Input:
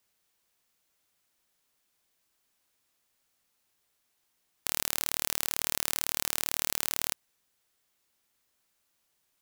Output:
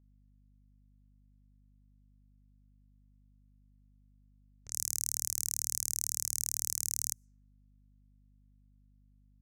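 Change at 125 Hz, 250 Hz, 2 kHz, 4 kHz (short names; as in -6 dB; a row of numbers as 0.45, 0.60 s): 0.0 dB, under -10 dB, -19.5 dB, -9.0 dB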